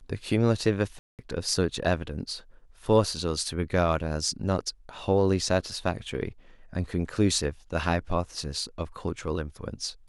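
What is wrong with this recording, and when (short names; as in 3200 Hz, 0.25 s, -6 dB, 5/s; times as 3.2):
0.99–1.19 gap 0.198 s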